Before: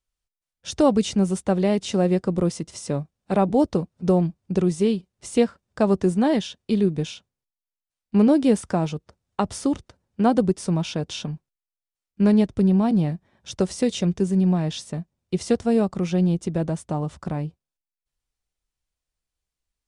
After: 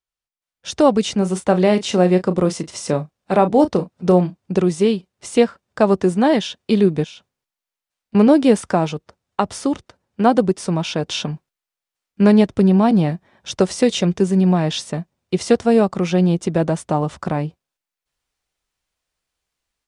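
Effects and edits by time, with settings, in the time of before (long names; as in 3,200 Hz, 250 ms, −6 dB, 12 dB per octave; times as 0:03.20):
0:01.18–0:04.37: double-tracking delay 33 ms −11 dB
0:07.04–0:08.15: downward compressor 5 to 1, threshold −45 dBFS
whole clip: low-pass filter 1,400 Hz 6 dB per octave; spectral tilt +3 dB per octave; automatic gain control gain up to 12.5 dB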